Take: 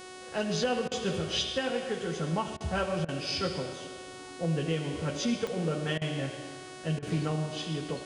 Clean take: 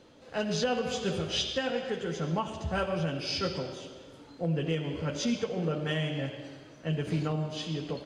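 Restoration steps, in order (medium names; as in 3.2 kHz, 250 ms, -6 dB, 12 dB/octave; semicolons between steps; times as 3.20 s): de-click; de-hum 370 Hz, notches 28; interpolate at 0.88/2.57/3.05/5.98/6.99 s, 34 ms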